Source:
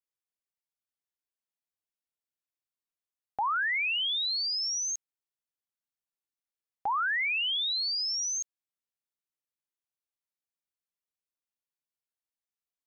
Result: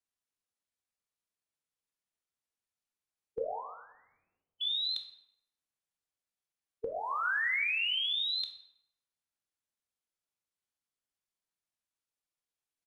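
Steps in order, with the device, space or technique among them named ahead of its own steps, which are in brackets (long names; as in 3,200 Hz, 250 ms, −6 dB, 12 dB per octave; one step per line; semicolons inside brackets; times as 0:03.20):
0:03.41–0:04.61: Butterworth low-pass 1,400 Hz 36 dB per octave
monster voice (pitch shifter −7.5 semitones; formants moved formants −2.5 semitones; low-shelf EQ 150 Hz +3.5 dB; convolution reverb RT60 0.85 s, pre-delay 10 ms, DRR 5 dB)
level −2 dB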